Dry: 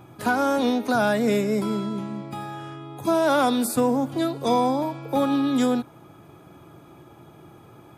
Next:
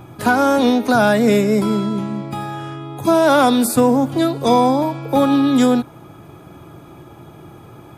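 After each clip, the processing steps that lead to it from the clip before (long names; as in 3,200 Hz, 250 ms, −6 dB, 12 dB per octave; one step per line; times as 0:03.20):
low-shelf EQ 79 Hz +7.5 dB
level +7 dB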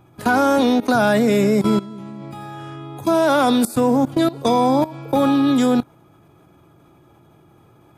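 output level in coarse steps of 18 dB
level +2.5 dB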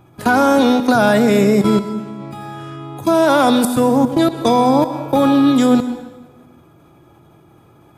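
dense smooth reverb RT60 1.2 s, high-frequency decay 0.8×, pre-delay 100 ms, DRR 11 dB
level +3 dB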